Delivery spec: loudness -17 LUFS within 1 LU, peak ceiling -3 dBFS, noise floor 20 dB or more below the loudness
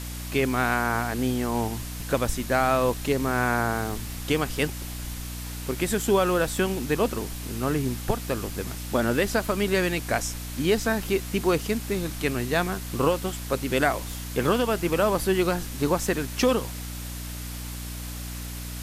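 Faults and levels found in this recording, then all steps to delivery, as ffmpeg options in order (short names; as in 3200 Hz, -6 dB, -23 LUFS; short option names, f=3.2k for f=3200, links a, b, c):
hum 60 Hz; harmonics up to 300 Hz; hum level -33 dBFS; noise floor -35 dBFS; noise floor target -47 dBFS; loudness -26.5 LUFS; peak -8.0 dBFS; loudness target -17.0 LUFS
-> -af "bandreject=f=60:t=h:w=6,bandreject=f=120:t=h:w=6,bandreject=f=180:t=h:w=6,bandreject=f=240:t=h:w=6,bandreject=f=300:t=h:w=6"
-af "afftdn=nr=12:nf=-35"
-af "volume=9.5dB,alimiter=limit=-3dB:level=0:latency=1"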